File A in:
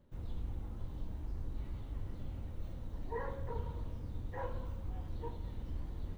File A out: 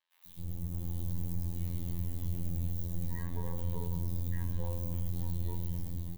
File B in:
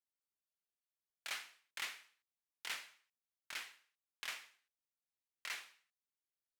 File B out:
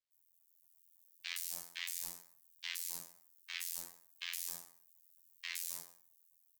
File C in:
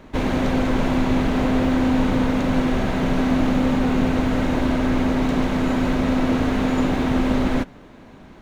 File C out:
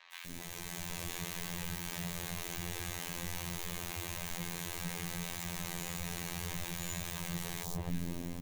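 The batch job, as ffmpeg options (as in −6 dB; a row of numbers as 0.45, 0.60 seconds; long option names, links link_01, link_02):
-filter_complex "[0:a]afftfilt=real='re*lt(hypot(re,im),0.141)':imag='im*lt(hypot(re,im),0.141)':win_size=1024:overlap=0.75,acrossover=split=280[link_01][link_02];[link_01]aecho=1:1:6.3:0.44[link_03];[link_02]acompressor=threshold=-43dB:ratio=8[link_04];[link_03][link_04]amix=inputs=2:normalize=0,bass=frequency=250:gain=11,treble=frequency=4000:gain=7,acrossover=split=1100|4100[link_05][link_06][link_07];[link_07]adelay=120[link_08];[link_05]adelay=260[link_09];[link_09][link_06][link_08]amix=inputs=3:normalize=0,afftfilt=real='hypot(re,im)*cos(PI*b)':imag='0':win_size=2048:overlap=0.75,aemphasis=mode=production:type=75fm,bandreject=frequency=1400:width=5.2,alimiter=level_in=2dB:limit=-24dB:level=0:latency=1:release=29,volume=-2dB,dynaudnorm=framelen=110:gausssize=13:maxgain=6dB"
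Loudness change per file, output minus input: +6.5, +4.0, −18.5 LU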